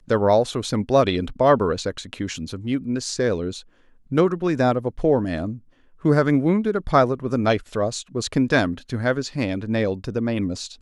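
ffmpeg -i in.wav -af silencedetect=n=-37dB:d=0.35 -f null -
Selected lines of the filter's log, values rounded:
silence_start: 3.61
silence_end: 4.11 | silence_duration: 0.51
silence_start: 5.59
silence_end: 6.05 | silence_duration: 0.46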